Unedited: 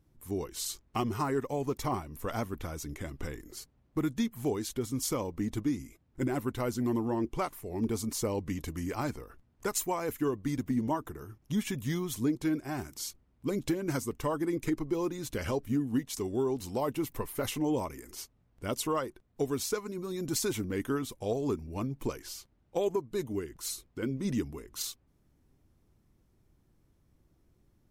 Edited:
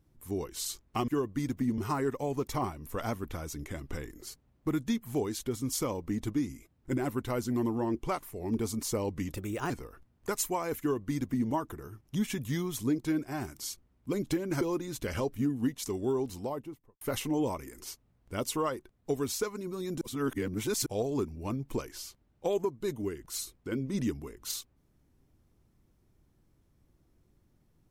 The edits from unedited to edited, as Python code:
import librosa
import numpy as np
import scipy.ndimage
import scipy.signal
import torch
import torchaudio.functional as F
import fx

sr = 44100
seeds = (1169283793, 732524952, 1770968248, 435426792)

y = fx.studio_fade_out(x, sr, start_s=16.46, length_s=0.86)
y = fx.edit(y, sr, fx.speed_span(start_s=8.64, length_s=0.43, speed=1.19),
    fx.duplicate(start_s=10.17, length_s=0.7, to_s=1.08),
    fx.cut(start_s=13.98, length_s=0.94),
    fx.reverse_span(start_s=20.32, length_s=0.85), tone=tone)